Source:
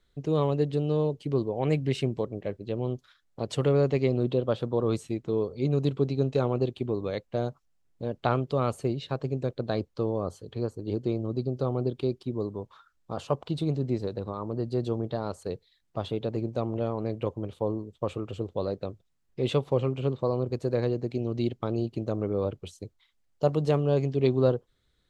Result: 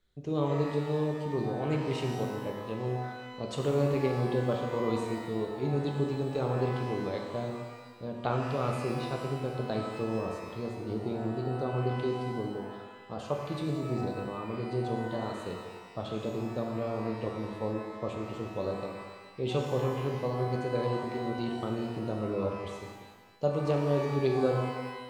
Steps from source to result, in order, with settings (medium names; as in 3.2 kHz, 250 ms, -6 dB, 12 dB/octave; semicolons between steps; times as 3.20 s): pitch-shifted reverb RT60 1.3 s, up +12 st, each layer -8 dB, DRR 1 dB; trim -6 dB